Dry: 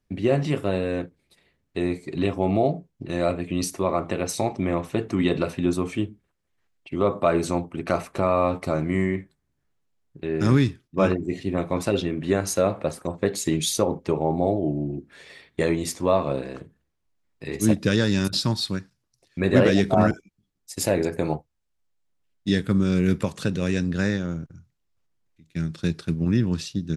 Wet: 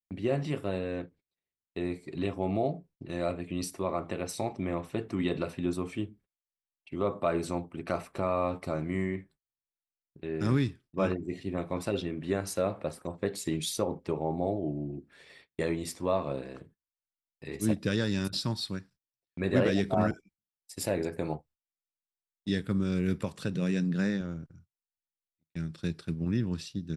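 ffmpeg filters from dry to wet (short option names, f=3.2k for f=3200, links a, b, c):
-filter_complex "[0:a]asettb=1/sr,asplit=3[a][b][c];[a]atrim=end=0.794[d];[b]atrim=start=0.79:end=1.85,asetpts=PTS-STARTPTS,afade=t=in:d=0.004:c=qsin,afade=t=out:st=1.056:d=0.004:c=qsin,lowpass=6.8k[e];[c]atrim=start=1.846[f];[d][e]acrossfade=d=0.004:c1=hsin:c2=qsin[g];[g][f]acrossfade=d=0.004:c1=qsin:c2=hsin,asettb=1/sr,asplit=3[h][i][j];[h]atrim=end=23.554[k];[i]atrim=start=23.55:end=24.21,asetpts=PTS-STARTPTS,afade=t=in:d=0.004:c=qsin,afade=t=out:st=0.656:d=0.004:c=qsin,lowshelf=f=110:t=q:w=3:g=-10.5[l];[j]atrim=start=24.206[m];[k][l]acrossfade=d=0.004:c1=hsin:c2=qsin[n];[n][m]acrossfade=d=0.004:c1=qsin:c2=hsin,bandreject=f=6.5k:w=9.3,agate=range=-25dB:threshold=-48dB:ratio=16:detection=peak,volume=-8dB"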